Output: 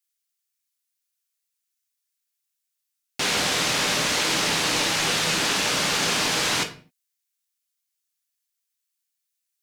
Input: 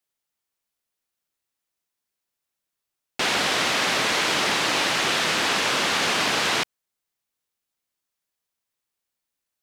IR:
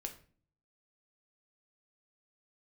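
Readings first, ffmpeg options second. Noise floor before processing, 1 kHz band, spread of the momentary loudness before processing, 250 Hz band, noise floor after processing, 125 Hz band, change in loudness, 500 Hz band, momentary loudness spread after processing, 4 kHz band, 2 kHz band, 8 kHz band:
-84 dBFS, -2.5 dB, 3 LU, +0.5 dB, -81 dBFS, +4.0 dB, -0.5 dB, -1.5 dB, 3 LU, 0.0 dB, -2.0 dB, +3.5 dB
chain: -filter_complex "[0:a]bass=f=250:g=6,treble=f=4000:g=7,acrossover=split=1200[s0][s1];[s0]aeval=exprs='val(0)*gte(abs(val(0)),0.0211)':c=same[s2];[s2][s1]amix=inputs=2:normalize=0[s3];[1:a]atrim=start_sample=2205,afade=t=out:st=0.32:d=0.01,atrim=end_sample=14553[s4];[s3][s4]afir=irnorm=-1:irlink=0"

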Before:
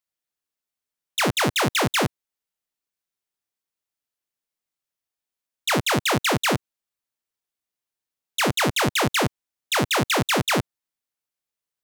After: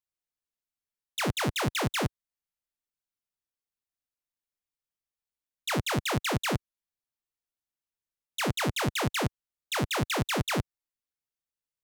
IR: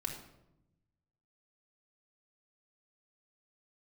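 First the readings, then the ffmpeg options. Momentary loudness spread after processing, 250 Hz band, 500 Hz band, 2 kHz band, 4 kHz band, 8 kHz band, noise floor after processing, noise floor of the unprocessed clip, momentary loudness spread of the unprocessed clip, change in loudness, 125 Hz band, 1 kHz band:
6 LU, -6.5 dB, -8.0 dB, -8.5 dB, -8.5 dB, -8.5 dB, under -85 dBFS, under -85 dBFS, 7 LU, -7.5 dB, -3.5 dB, -8.5 dB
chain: -af "lowshelf=f=110:g=11.5,volume=0.376"

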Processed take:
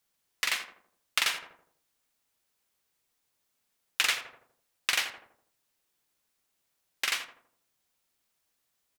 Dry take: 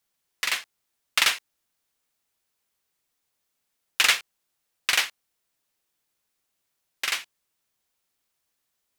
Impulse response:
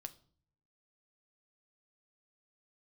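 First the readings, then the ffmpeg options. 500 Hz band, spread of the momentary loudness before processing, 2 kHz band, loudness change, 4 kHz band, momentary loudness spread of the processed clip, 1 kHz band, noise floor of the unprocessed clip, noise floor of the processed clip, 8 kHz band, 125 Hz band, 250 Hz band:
-4.5 dB, 11 LU, -5.5 dB, -5.5 dB, -5.5 dB, 11 LU, -5.0 dB, -79 dBFS, -79 dBFS, -5.5 dB, no reading, -4.5 dB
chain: -filter_complex "[0:a]asplit=2[s0][s1];[s1]adelay=82,lowpass=f=1100:p=1,volume=0.376,asplit=2[s2][s3];[s3]adelay=82,lowpass=f=1100:p=1,volume=0.5,asplit=2[s4][s5];[s5]adelay=82,lowpass=f=1100:p=1,volume=0.5,asplit=2[s6][s7];[s7]adelay=82,lowpass=f=1100:p=1,volume=0.5,asplit=2[s8][s9];[s9]adelay=82,lowpass=f=1100:p=1,volume=0.5,asplit=2[s10][s11];[s11]adelay=82,lowpass=f=1100:p=1,volume=0.5[s12];[s0][s2][s4][s6][s8][s10][s12]amix=inputs=7:normalize=0,acompressor=threshold=0.0501:ratio=2.5"

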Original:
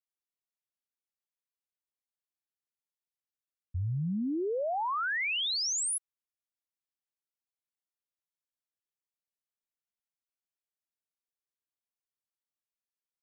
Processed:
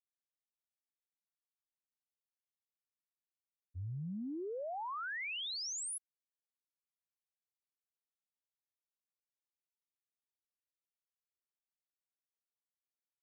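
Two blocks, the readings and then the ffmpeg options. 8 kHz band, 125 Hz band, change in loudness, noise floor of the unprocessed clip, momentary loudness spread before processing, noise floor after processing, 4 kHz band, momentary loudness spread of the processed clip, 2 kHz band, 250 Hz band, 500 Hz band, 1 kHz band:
-9.5 dB, -9.5 dB, -9.5 dB, under -85 dBFS, 7 LU, under -85 dBFS, -9.5 dB, 7 LU, -9.5 dB, -9.5 dB, -9.5 dB, -9.5 dB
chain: -af "agate=range=0.0224:threshold=0.0891:ratio=3:detection=peak,volume=2.24"

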